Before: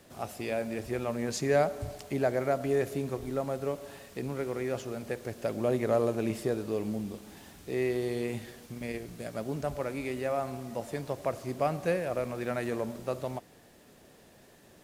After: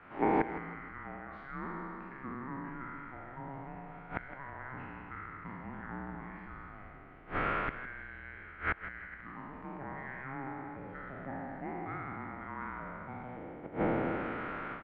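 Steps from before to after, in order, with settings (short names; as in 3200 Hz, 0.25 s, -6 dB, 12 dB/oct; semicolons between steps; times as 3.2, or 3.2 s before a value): spectral trails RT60 2.46 s; AGC gain up to 13.5 dB; in parallel at 0 dB: limiter -10.5 dBFS, peak gain reduction 9 dB; on the sum: flipped gate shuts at -8 dBFS, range -25 dB; bell 550 Hz -11.5 dB 1.7 oct; on a send: feedback echo 0.162 s, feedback 35%, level -13 dB; on the sum: mistuned SSB -400 Hz 570–2400 Hz; gain +5.5 dB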